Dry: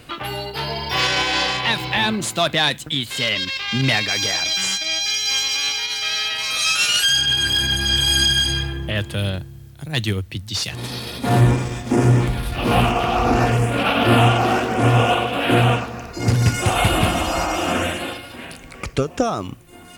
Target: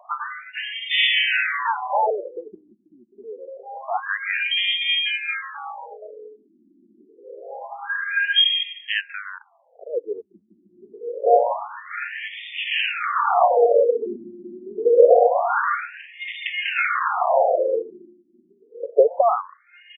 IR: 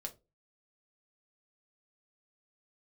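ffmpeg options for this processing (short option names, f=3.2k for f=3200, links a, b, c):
-af "firequalizer=gain_entry='entry(120,0);entry(270,-30);entry(460,10);entry(750,2);entry(2400,0);entry(15000,10)':delay=0.05:min_phase=1,adynamicsmooth=sensitivity=2.5:basefreq=5.7k,afftfilt=real='re*between(b*sr/1024,250*pow(2600/250,0.5+0.5*sin(2*PI*0.26*pts/sr))/1.41,250*pow(2600/250,0.5+0.5*sin(2*PI*0.26*pts/sr))*1.41)':imag='im*between(b*sr/1024,250*pow(2600/250,0.5+0.5*sin(2*PI*0.26*pts/sr))/1.41,250*pow(2600/250,0.5+0.5*sin(2*PI*0.26*pts/sr))*1.41)':win_size=1024:overlap=0.75,volume=4dB"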